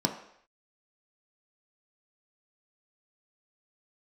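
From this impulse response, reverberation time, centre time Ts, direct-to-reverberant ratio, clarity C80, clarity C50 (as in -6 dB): no single decay rate, 18 ms, 2.5 dB, 11.5 dB, 9.0 dB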